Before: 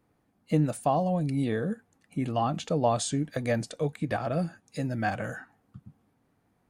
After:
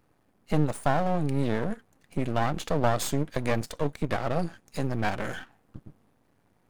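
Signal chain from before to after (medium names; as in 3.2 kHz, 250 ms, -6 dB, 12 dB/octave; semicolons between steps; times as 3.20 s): half-wave rectifier; in parallel at -2 dB: compression, threshold -35 dBFS, peak gain reduction 14.5 dB; on the sum: trim +2 dB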